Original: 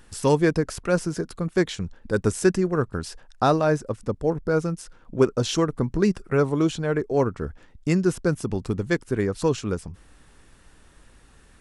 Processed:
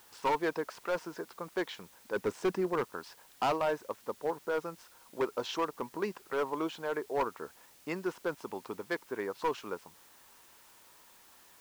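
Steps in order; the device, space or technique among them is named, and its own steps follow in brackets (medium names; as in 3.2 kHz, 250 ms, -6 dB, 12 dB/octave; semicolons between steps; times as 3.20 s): 2.16–2.84 s: bass shelf 430 Hz +9 dB; drive-through speaker (band-pass 430–3800 Hz; peaking EQ 950 Hz +10 dB 0.49 oct; hard clipper -17 dBFS, distortion -10 dB; white noise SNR 24 dB); trim -7.5 dB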